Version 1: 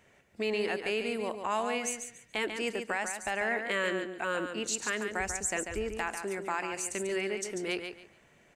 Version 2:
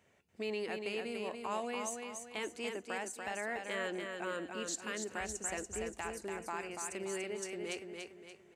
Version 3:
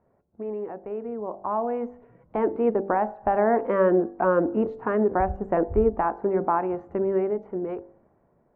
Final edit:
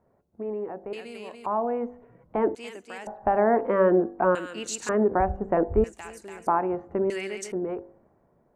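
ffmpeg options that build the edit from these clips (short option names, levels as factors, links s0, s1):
-filter_complex "[1:a]asplit=3[s0][s1][s2];[0:a]asplit=2[s3][s4];[2:a]asplit=6[s5][s6][s7][s8][s9][s10];[s5]atrim=end=0.932[s11];[s0]atrim=start=0.928:end=1.462[s12];[s6]atrim=start=1.458:end=2.552[s13];[s1]atrim=start=2.548:end=3.072[s14];[s7]atrim=start=3.068:end=4.352[s15];[s3]atrim=start=4.348:end=4.892[s16];[s8]atrim=start=4.888:end=5.842[s17];[s2]atrim=start=5.838:end=6.472[s18];[s9]atrim=start=6.468:end=7.102[s19];[s4]atrim=start=7.098:end=7.522[s20];[s10]atrim=start=7.518[s21];[s11][s12]acrossfade=d=0.004:c1=hsin:c2=hsin[s22];[s22][s13]acrossfade=d=0.004:c1=hsin:c2=hsin[s23];[s23][s14]acrossfade=d=0.004:c1=hsin:c2=hsin[s24];[s24][s15]acrossfade=d=0.004:c1=hsin:c2=hsin[s25];[s25][s16]acrossfade=d=0.004:c1=hsin:c2=hsin[s26];[s26][s17]acrossfade=d=0.004:c1=hsin:c2=hsin[s27];[s27][s18]acrossfade=d=0.004:c1=hsin:c2=hsin[s28];[s28][s19]acrossfade=d=0.004:c1=hsin:c2=hsin[s29];[s29][s20]acrossfade=d=0.004:c1=hsin:c2=hsin[s30];[s30][s21]acrossfade=d=0.004:c1=hsin:c2=hsin"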